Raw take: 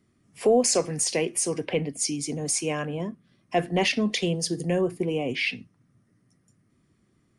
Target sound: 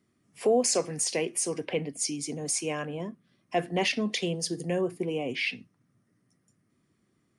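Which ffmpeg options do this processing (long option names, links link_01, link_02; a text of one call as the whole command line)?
ffmpeg -i in.wav -af "lowshelf=frequency=88:gain=-11.5,volume=-3dB" out.wav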